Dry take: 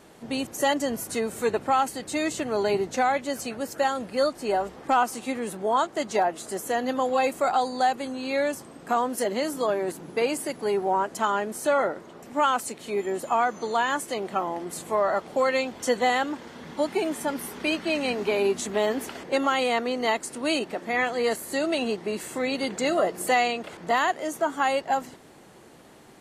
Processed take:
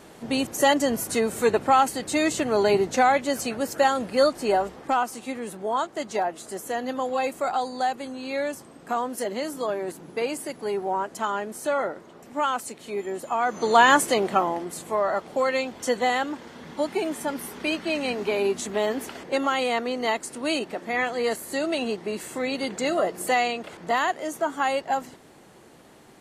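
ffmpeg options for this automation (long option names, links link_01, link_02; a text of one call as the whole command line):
ffmpeg -i in.wav -af "volume=16.5dB,afade=type=out:start_time=4.42:duration=0.59:silence=0.473151,afade=type=in:start_time=13.4:duration=0.49:silence=0.237137,afade=type=out:start_time=13.89:duration=0.84:silence=0.298538" out.wav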